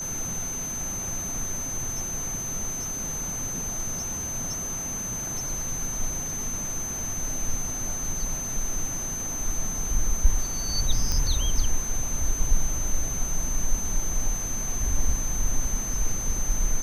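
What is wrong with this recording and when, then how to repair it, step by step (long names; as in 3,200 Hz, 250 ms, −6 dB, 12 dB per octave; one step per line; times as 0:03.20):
whistle 6,200 Hz −30 dBFS
0:11.12: click −12 dBFS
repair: click removal
notch filter 6,200 Hz, Q 30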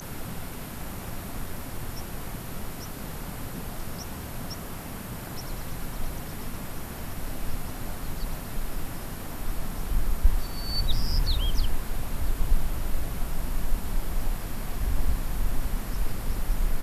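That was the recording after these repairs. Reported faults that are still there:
none of them is left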